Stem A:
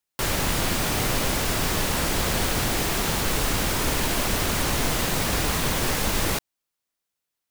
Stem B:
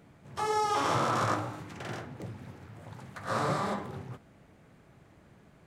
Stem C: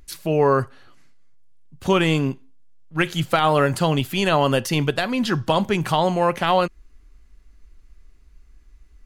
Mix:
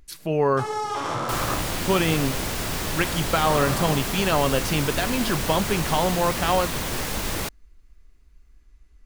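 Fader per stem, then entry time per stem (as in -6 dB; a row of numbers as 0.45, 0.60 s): -3.5, +0.5, -3.5 dB; 1.10, 0.20, 0.00 s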